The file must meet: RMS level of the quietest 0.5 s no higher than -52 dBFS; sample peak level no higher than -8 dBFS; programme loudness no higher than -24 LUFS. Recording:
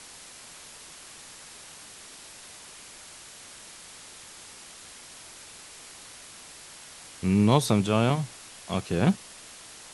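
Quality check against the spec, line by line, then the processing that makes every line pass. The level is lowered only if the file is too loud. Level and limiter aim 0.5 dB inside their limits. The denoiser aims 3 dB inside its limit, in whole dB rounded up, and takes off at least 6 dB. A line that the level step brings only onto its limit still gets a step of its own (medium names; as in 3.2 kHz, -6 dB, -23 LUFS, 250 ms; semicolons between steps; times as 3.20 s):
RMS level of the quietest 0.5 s -47 dBFS: fail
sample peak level -6.0 dBFS: fail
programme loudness -25.5 LUFS: pass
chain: noise reduction 8 dB, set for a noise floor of -47 dBFS; peak limiter -8.5 dBFS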